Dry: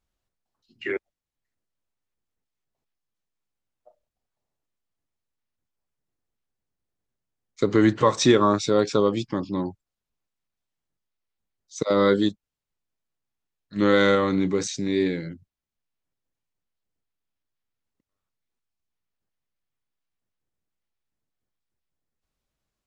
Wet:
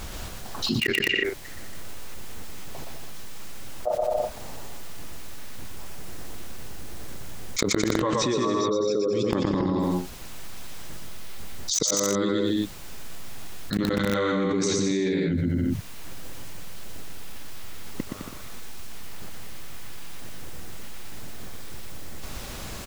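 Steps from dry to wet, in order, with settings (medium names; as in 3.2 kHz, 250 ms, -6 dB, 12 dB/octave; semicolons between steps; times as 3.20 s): 8.33–9.13 s: resonances exaggerated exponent 2; inverted gate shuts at -24 dBFS, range -32 dB; bouncing-ball echo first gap 120 ms, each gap 0.75×, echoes 5; in parallel at -7 dB: bit crusher 6-bit; on the sum: level flattener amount 100%; trim +5 dB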